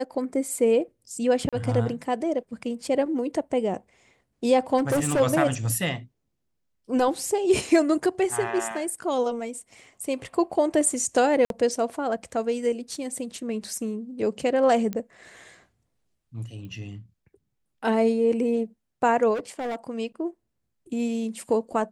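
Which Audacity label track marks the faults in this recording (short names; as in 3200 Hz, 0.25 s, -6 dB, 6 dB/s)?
1.490000	1.530000	gap 36 ms
4.770000	5.210000	clipped -19.5 dBFS
11.450000	11.500000	gap 52 ms
14.930000	14.930000	pop -17 dBFS
16.650000	16.650000	pop -31 dBFS
19.340000	19.760000	clipped -27 dBFS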